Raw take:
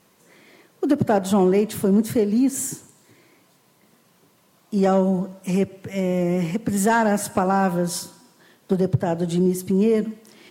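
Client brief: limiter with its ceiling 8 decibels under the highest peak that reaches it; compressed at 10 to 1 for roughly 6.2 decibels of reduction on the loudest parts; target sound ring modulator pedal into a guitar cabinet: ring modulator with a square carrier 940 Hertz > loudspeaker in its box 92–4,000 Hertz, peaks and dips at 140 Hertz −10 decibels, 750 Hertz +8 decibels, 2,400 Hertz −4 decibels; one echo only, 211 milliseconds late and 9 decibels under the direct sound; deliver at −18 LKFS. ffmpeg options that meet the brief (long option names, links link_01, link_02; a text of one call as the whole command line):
ffmpeg -i in.wav -af "acompressor=threshold=-20dB:ratio=10,alimiter=limit=-19dB:level=0:latency=1,aecho=1:1:211:0.355,aeval=exprs='val(0)*sgn(sin(2*PI*940*n/s))':channel_layout=same,highpass=92,equalizer=frequency=140:width_type=q:width=4:gain=-10,equalizer=frequency=750:width_type=q:width=4:gain=8,equalizer=frequency=2400:width_type=q:width=4:gain=-4,lowpass=frequency=4000:width=0.5412,lowpass=frequency=4000:width=1.3066,volume=6.5dB" out.wav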